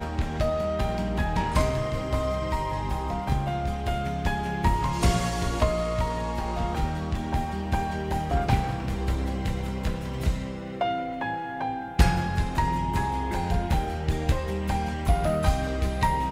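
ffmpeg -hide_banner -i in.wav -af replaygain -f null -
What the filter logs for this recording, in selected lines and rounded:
track_gain = +10.4 dB
track_peak = 0.254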